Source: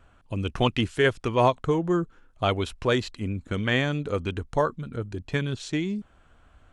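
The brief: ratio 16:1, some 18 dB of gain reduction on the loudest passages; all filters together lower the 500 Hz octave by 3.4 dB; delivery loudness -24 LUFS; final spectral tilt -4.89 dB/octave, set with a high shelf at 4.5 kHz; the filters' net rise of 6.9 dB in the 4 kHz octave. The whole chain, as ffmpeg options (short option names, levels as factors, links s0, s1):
-af "equalizer=f=500:t=o:g=-4.5,equalizer=f=4000:t=o:g=7,highshelf=f=4500:g=5.5,acompressor=threshold=0.0178:ratio=16,volume=6.31"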